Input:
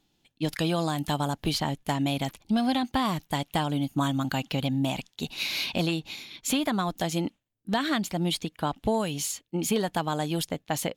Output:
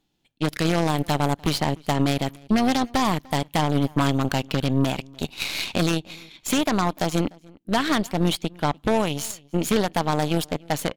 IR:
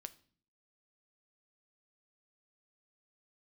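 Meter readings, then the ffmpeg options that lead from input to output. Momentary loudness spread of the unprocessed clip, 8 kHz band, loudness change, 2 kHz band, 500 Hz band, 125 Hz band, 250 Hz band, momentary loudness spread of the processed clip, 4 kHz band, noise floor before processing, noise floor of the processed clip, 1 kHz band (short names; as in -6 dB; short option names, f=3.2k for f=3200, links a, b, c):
5 LU, +2.0 dB, +4.5 dB, +4.5 dB, +5.5 dB, +5.5 dB, +4.5 dB, 6 LU, +2.5 dB, -75 dBFS, -61 dBFS, +5.0 dB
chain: -filter_complex "[0:a]asplit=2[a][b];[1:a]atrim=start_sample=2205,lowpass=3.9k[c];[b][c]afir=irnorm=-1:irlink=0,volume=-6dB[d];[a][d]amix=inputs=2:normalize=0,aeval=exprs='0.251*(cos(1*acos(clip(val(0)/0.251,-1,1)))-cos(1*PI/2))+0.0355*(cos(4*acos(clip(val(0)/0.251,-1,1)))-cos(4*PI/2))+0.112*(cos(5*acos(clip(val(0)/0.251,-1,1)))-cos(5*PI/2))+0.0891*(cos(7*acos(clip(val(0)/0.251,-1,1)))-cos(7*PI/2))+0.01*(cos(8*acos(clip(val(0)/0.251,-1,1)))-cos(8*PI/2))':c=same,asplit=2[e][f];[f]adelay=297.4,volume=-25dB,highshelf=f=4k:g=-6.69[g];[e][g]amix=inputs=2:normalize=0,tremolo=f=130:d=0.261"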